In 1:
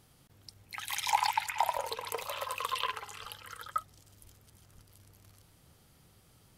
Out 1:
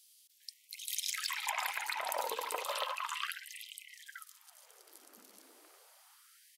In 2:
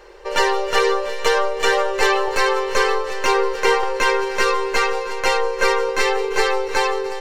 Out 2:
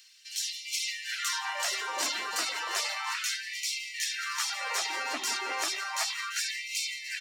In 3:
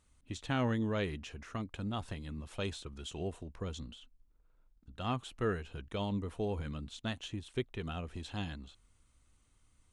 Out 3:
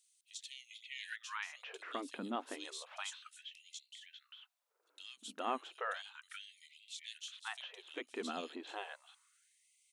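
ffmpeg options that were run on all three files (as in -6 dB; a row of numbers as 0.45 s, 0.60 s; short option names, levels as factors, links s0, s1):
-filter_complex "[0:a]afftfilt=real='re*lt(hypot(re,im),0.141)':imag='im*lt(hypot(re,im),0.141)':win_size=1024:overlap=0.75,asplit=2[s0][s1];[s1]acompressor=threshold=0.00501:ratio=16,volume=0.891[s2];[s0][s2]amix=inputs=2:normalize=0,acrossover=split=3100[s3][s4];[s3]adelay=400[s5];[s5][s4]amix=inputs=2:normalize=0,afftfilt=real='re*gte(b*sr/1024,210*pow(2000/210,0.5+0.5*sin(2*PI*0.33*pts/sr)))':imag='im*gte(b*sr/1024,210*pow(2000/210,0.5+0.5*sin(2*PI*0.33*pts/sr)))':win_size=1024:overlap=0.75"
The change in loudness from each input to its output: -3.0 LU, -11.5 LU, -6.5 LU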